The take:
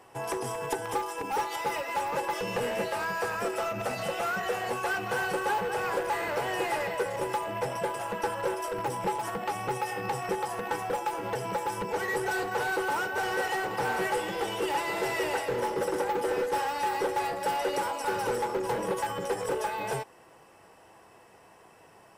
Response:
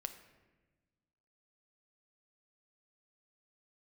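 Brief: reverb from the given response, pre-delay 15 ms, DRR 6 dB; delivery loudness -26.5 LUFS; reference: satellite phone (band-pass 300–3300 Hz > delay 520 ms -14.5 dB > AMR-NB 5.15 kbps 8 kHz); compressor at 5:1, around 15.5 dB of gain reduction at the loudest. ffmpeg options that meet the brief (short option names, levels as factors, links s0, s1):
-filter_complex "[0:a]acompressor=threshold=0.00631:ratio=5,asplit=2[s0][s1];[1:a]atrim=start_sample=2205,adelay=15[s2];[s1][s2]afir=irnorm=-1:irlink=0,volume=0.668[s3];[s0][s3]amix=inputs=2:normalize=0,highpass=300,lowpass=3300,aecho=1:1:520:0.188,volume=10.6" -ar 8000 -c:a libopencore_amrnb -b:a 5150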